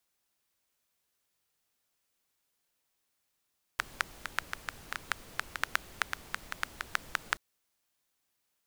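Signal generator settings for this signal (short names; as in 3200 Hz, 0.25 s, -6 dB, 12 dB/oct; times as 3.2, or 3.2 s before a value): rain from filtered ticks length 3.58 s, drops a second 6.1, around 1500 Hz, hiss -12 dB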